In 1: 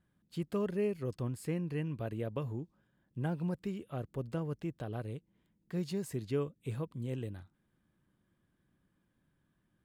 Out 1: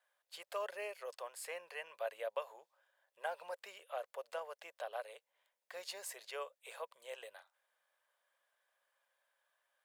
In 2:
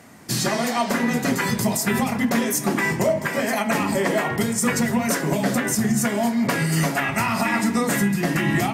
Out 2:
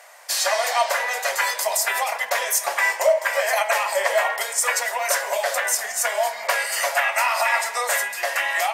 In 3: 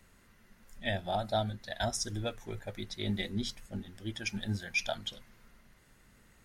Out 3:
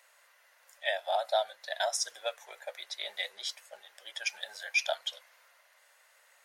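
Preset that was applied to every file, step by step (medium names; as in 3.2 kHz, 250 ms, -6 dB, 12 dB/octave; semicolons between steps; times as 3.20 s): elliptic high-pass 560 Hz, stop band 50 dB; peaking EQ 1.3 kHz -3.5 dB 0.22 oct; trim +4 dB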